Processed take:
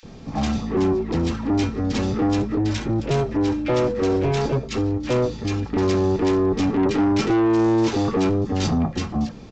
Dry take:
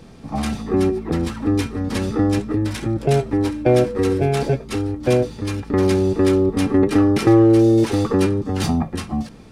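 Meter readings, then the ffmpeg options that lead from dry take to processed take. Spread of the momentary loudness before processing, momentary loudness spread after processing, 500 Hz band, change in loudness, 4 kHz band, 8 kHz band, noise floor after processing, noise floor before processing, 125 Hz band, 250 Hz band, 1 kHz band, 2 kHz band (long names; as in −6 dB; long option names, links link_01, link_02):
11 LU, 6 LU, −3.5 dB, −3.0 dB, −0.5 dB, −3.0 dB, −37 dBFS, −40 dBFS, −3.0 dB, −2.5 dB, −0.5 dB, −1.5 dB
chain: -filter_complex "[0:a]aresample=16000,asoftclip=type=tanh:threshold=-18dB,aresample=44100,acrossover=split=1600[link_01][link_02];[link_01]adelay=30[link_03];[link_03][link_02]amix=inputs=2:normalize=0,volume=2.5dB"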